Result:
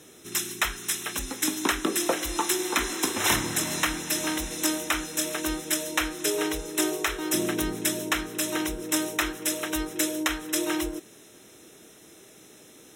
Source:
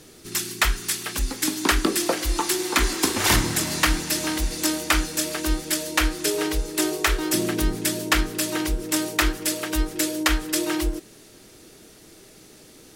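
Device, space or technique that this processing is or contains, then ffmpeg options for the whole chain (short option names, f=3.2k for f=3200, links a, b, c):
PA system with an anti-feedback notch: -af "highpass=f=180:p=1,asuperstop=centerf=4600:order=12:qfactor=5.1,alimiter=limit=-8.5dB:level=0:latency=1:release=371,volume=-1.5dB"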